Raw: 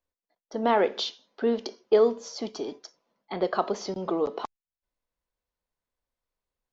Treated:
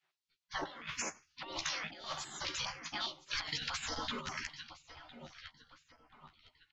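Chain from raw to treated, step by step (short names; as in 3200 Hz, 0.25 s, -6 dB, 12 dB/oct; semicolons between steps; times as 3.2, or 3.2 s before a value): feedback echo 1.008 s, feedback 41%, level -17 dB; low-pass opened by the level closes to 2900 Hz, open at -23 dBFS; spectral gate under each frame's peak -25 dB weak; doubler 13 ms -4 dB; negative-ratio compressor -51 dBFS, ratio -1; stepped notch 4.9 Hz 220–3700 Hz; gain +11.5 dB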